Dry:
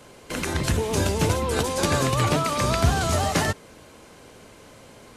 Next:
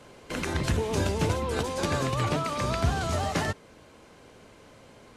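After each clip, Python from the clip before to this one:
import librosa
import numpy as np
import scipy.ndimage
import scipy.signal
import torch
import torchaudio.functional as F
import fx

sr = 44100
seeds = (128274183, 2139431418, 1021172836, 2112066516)

y = fx.high_shelf(x, sr, hz=7900.0, db=-10.0)
y = fx.rider(y, sr, range_db=3, speed_s=2.0)
y = y * 10.0 ** (-4.5 / 20.0)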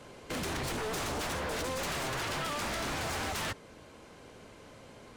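y = 10.0 ** (-30.0 / 20.0) * (np.abs((x / 10.0 ** (-30.0 / 20.0) + 3.0) % 4.0 - 2.0) - 1.0)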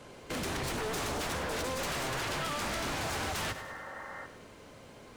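y = fx.spec_repair(x, sr, seeds[0], start_s=3.58, length_s=0.65, low_hz=470.0, high_hz=2100.0, source='before')
y = fx.echo_crushed(y, sr, ms=101, feedback_pct=55, bits=10, wet_db=-12)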